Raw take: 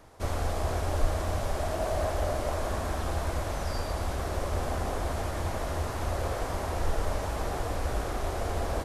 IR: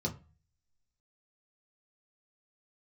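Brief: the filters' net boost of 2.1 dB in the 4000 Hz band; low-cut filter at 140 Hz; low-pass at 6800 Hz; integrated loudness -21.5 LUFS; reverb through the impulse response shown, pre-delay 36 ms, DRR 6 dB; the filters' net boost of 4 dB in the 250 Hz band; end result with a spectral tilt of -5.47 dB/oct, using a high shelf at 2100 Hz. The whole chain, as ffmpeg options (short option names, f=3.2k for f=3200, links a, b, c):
-filter_complex "[0:a]highpass=140,lowpass=6.8k,equalizer=f=250:t=o:g=6,highshelf=f=2.1k:g=-5,equalizer=f=4k:t=o:g=8,asplit=2[a][b];[1:a]atrim=start_sample=2205,adelay=36[c];[b][c]afir=irnorm=-1:irlink=0,volume=-9.5dB[d];[a][d]amix=inputs=2:normalize=0,volume=9dB"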